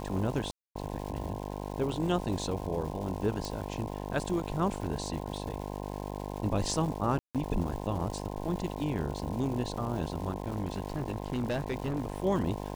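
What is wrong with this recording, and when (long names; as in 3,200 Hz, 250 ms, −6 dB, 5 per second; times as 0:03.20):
mains buzz 50 Hz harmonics 21 −38 dBFS
surface crackle 470 per second −40 dBFS
0:00.51–0:00.75: drop-out 244 ms
0:03.45: click
0:07.19–0:07.35: drop-out 157 ms
0:10.42–0:12.22: clipping −26.5 dBFS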